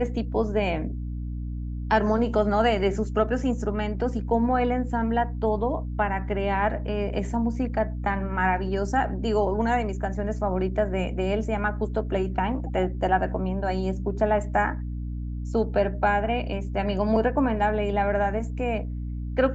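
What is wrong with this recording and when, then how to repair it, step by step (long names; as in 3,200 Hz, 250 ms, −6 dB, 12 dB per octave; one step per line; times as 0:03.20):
mains hum 60 Hz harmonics 5 −31 dBFS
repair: hum removal 60 Hz, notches 5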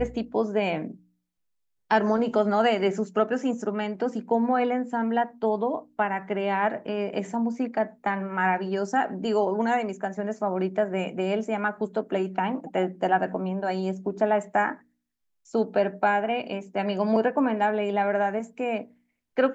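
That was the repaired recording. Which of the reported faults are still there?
none of them is left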